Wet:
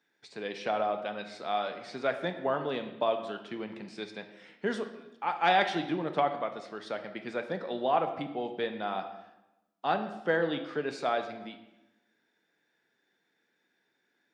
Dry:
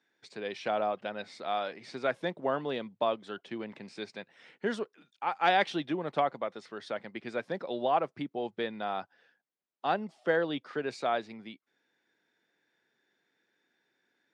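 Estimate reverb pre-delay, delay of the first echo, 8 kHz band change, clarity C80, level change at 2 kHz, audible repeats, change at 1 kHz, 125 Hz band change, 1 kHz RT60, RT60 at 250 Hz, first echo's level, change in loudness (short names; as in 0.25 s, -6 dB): 4 ms, none, n/a, 12.0 dB, +1.0 dB, none, +1.0 dB, +2.0 dB, 0.95 s, 1.2 s, none, +1.0 dB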